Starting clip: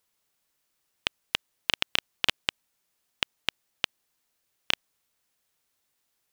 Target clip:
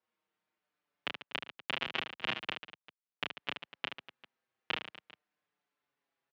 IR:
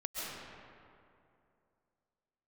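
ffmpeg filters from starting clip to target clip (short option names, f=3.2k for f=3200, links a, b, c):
-filter_complex "[0:a]asettb=1/sr,asplit=3[a][b][c];[a]atrim=end=1.214[d];[b]atrim=start=1.21:end=3.37,asetpts=PTS-STARTPTS,afade=t=in:d=0.004:c=qsin,afade=t=out:st=2.156:d=0.004:c=qsin,acrusher=bits=8:dc=4:mix=0:aa=0.000001[e];[c]atrim=start=3.366[f];[d][e]acrossfade=d=0.004:c1=hsin:c2=qsin[g];[g][f]acrossfade=d=0.004:c1=qsin:c2=hsin,highpass=150,lowpass=2.2k,aecho=1:1:30|75|142.5|243.8|395.6:0.631|0.398|0.251|0.158|0.1,asplit=2[h][i];[i]adelay=5.9,afreqshift=-0.43[j];[h][j]amix=inputs=2:normalize=1,volume=-1.5dB"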